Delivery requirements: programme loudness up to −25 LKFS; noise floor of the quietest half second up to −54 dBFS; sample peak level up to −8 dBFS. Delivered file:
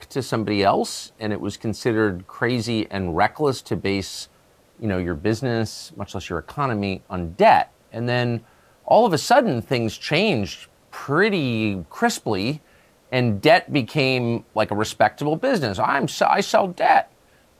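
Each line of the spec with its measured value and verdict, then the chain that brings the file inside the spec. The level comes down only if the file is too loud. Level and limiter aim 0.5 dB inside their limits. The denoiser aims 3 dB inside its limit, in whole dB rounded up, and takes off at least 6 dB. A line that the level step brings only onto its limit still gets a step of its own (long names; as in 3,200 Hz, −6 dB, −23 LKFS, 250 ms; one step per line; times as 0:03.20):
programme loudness −21.5 LKFS: out of spec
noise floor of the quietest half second −56 dBFS: in spec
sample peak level −4.5 dBFS: out of spec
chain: level −4 dB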